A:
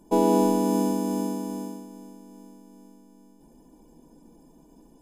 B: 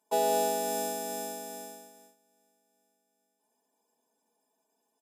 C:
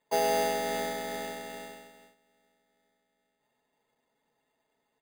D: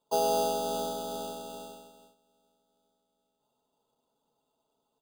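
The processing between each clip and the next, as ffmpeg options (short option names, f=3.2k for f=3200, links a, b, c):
-af "highpass=850,agate=range=-14dB:threshold=-55dB:ratio=16:detection=peak,aecho=1:1:4.6:0.94"
-af "acrusher=samples=8:mix=1:aa=0.000001"
-af "asuperstop=centerf=2000:order=8:qfactor=1.4"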